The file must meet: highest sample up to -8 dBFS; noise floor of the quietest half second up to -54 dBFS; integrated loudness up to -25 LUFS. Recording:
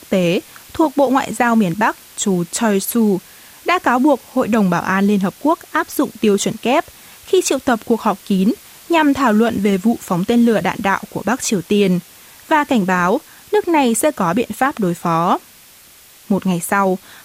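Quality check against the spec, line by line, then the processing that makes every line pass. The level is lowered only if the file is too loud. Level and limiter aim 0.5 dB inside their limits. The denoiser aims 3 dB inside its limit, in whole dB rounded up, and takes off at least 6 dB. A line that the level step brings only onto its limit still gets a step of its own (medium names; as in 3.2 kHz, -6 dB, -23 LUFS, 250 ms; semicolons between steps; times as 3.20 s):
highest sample -3.5 dBFS: fail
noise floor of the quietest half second -45 dBFS: fail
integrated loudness -17.0 LUFS: fail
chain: noise reduction 6 dB, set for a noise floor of -45 dBFS; trim -8.5 dB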